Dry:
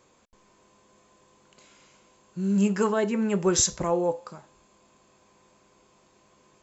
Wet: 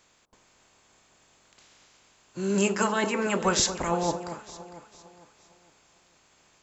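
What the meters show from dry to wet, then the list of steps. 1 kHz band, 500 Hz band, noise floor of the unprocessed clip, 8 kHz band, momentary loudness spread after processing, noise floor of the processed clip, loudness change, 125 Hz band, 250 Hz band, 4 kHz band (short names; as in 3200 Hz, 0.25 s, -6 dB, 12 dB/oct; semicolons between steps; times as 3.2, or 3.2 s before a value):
+3.5 dB, -2.0 dB, -62 dBFS, n/a, 18 LU, -64 dBFS, -1.5 dB, -3.0 dB, -4.0 dB, +3.5 dB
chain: spectral limiter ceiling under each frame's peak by 17 dB; echo with dull and thin repeats by turns 0.227 s, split 1100 Hz, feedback 61%, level -10 dB; gain -1.5 dB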